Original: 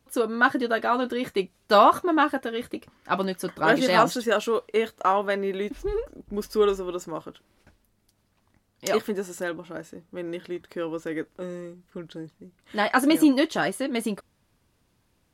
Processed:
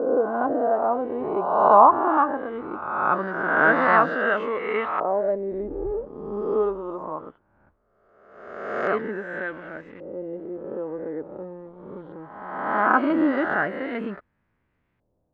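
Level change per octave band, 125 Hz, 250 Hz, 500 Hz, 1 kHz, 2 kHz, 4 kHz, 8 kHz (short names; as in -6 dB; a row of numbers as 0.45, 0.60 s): -2.0 dB, -2.0 dB, +1.5 dB, +4.0 dB, +3.0 dB, under -10 dB, under -30 dB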